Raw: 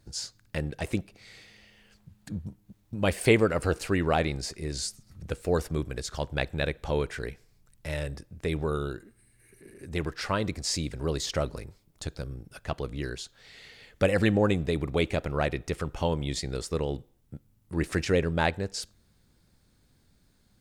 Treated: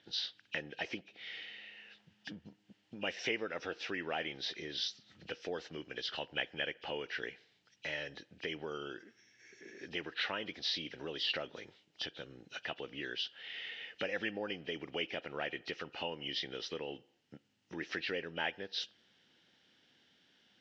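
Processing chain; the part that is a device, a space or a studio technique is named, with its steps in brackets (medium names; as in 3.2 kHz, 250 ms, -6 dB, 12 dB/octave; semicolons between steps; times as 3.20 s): hearing aid with frequency lowering (knee-point frequency compression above 2.3 kHz 1.5:1; compression 3:1, threshold -37 dBFS, peak gain reduction 16 dB; cabinet simulation 360–5300 Hz, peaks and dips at 410 Hz -3 dB, 600 Hz -4 dB, 1.1 kHz -8 dB, 1.8 kHz +5 dB, 2.9 kHz +10 dB); trim +2 dB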